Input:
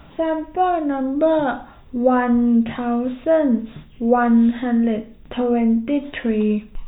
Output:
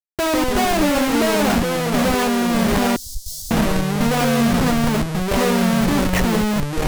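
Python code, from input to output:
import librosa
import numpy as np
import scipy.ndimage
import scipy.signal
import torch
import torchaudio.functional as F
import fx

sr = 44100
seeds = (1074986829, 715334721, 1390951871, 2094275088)

y = fx.schmitt(x, sr, flips_db=-30.0)
y = fx.echo_pitch(y, sr, ms=100, semitones=-4, count=2, db_per_echo=-3.0)
y = fx.cheby2_bandstop(y, sr, low_hz=170.0, high_hz=2600.0, order=4, stop_db=40, at=(2.96, 3.51))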